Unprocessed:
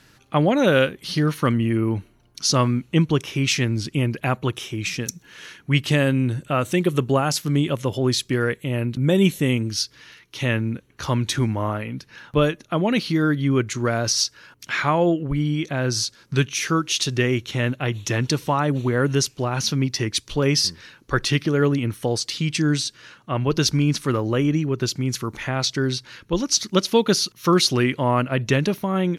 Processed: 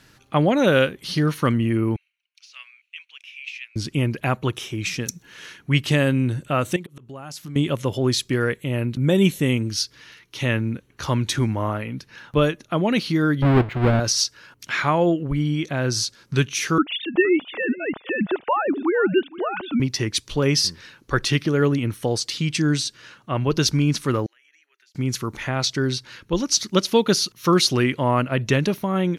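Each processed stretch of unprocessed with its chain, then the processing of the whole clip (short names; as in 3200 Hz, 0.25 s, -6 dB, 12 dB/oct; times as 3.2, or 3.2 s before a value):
1.96–3.76 de-esser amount 55% + ladder high-pass 2300 Hz, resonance 70% + tilt -3.5 dB/oct
6.76–7.56 auto swell 0.572 s + compressor 3:1, threshold -35 dBFS + notch 460 Hz, Q 11
13.42–14 half-waves squared off + air absorption 500 m + notch 5900 Hz
16.78–19.8 sine-wave speech + echo 0.468 s -19 dB
24.26–24.95 Bessel high-pass 1500 Hz, order 8 + compressor 12:1, threshold -38 dBFS + EQ curve 190 Hz 0 dB, 330 Hz +10 dB, 540 Hz -16 dB, 1100 Hz -28 dB, 1800 Hz -11 dB, 3300 Hz -18 dB
whole clip: dry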